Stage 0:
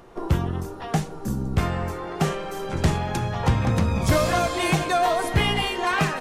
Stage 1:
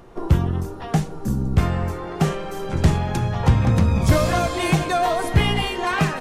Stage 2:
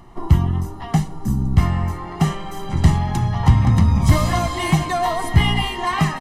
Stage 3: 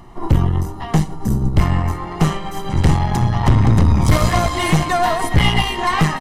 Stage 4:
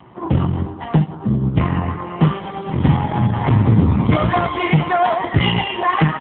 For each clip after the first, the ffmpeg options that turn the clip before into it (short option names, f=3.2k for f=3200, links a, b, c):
-af "lowshelf=f=250:g=6"
-af "aecho=1:1:1:0.71,volume=-1dB"
-af "aeval=exprs='(tanh(5.62*val(0)+0.65)-tanh(0.65))/5.62':c=same,volume=7dB"
-af "volume=2.5dB" -ar 8000 -c:a libopencore_amrnb -b:a 5900